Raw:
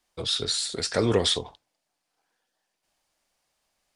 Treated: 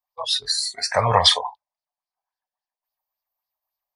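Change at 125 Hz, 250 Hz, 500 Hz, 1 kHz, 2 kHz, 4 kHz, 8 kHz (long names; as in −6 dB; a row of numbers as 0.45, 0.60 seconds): +3.5, −10.0, +1.5, +15.5, +7.0, +6.5, +3.0 decibels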